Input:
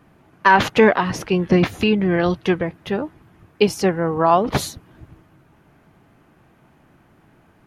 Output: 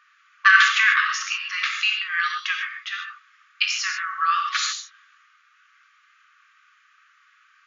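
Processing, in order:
linear-phase brick-wall band-pass 1,100–7,200 Hz
convolution reverb, pre-delay 3 ms, DRR 1.5 dB
level +3 dB

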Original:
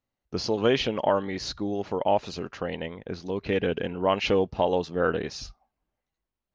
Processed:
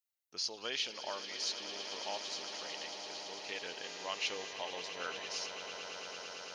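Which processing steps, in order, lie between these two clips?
0:03.83–0:04.52: hum with harmonics 400 Hz, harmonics 17, −40 dBFS −5 dB per octave
first difference
on a send: echo that builds up and dies away 112 ms, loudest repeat 8, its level −13 dB
on the sum: level +1 dB

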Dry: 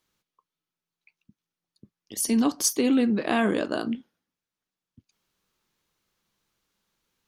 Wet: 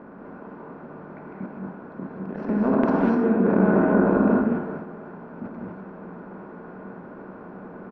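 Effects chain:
compressor on every frequency bin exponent 0.4
low-pass filter 1,500 Hz 24 dB per octave
in parallel at 0 dB: brickwall limiter −15.5 dBFS, peak gain reduction 7.5 dB
on the sum: transient designer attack −6 dB, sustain +6 dB
output level in coarse steps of 11 dB
single-tap delay 481 ms −21 dB
reverb whose tail is shaped and stops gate 250 ms rising, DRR −2 dB
wrong playback speed 48 kHz file played as 44.1 kHz

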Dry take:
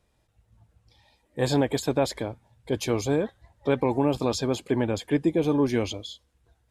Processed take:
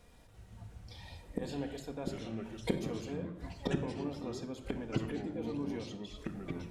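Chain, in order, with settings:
gate with flip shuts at −27 dBFS, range −27 dB
rectangular room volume 2,300 cubic metres, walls furnished, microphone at 1.8 metres
delay with pitch and tempo change per echo 340 ms, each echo −4 semitones, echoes 2
level +7.5 dB

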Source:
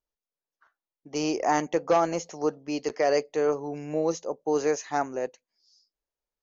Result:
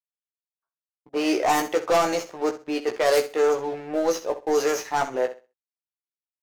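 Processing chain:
stylus tracing distortion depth 0.16 ms
downward expander −54 dBFS
low-pass that shuts in the quiet parts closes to 740 Hz, open at −19 dBFS
high-pass filter 370 Hz 6 dB per octave
high-shelf EQ 2,100 Hz +5 dB
leveller curve on the samples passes 3
double-tracking delay 16 ms −4.5 dB
flutter between parallel walls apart 11.1 metres, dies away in 0.3 s
level −6 dB

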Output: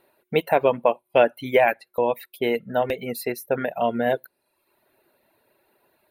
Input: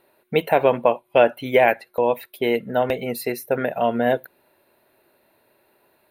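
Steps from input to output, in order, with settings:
reverb reduction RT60 0.75 s
level −1.5 dB

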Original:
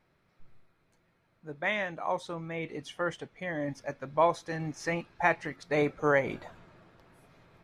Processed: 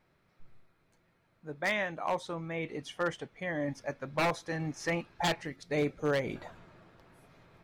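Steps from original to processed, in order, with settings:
0:05.43–0:06.36: parametric band 1,100 Hz −9 dB 1.8 octaves
wave folding −22 dBFS

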